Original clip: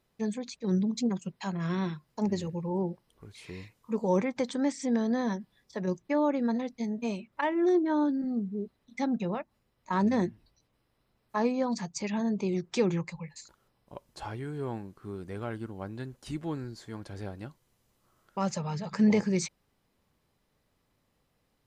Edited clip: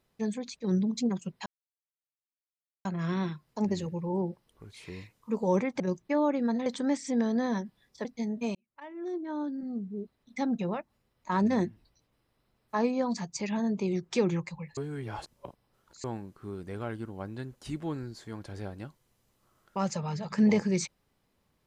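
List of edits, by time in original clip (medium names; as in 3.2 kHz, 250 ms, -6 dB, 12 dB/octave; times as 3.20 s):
1.46 s: insert silence 1.39 s
5.80–6.66 s: move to 4.41 s
7.16–9.13 s: fade in
13.38–14.65 s: reverse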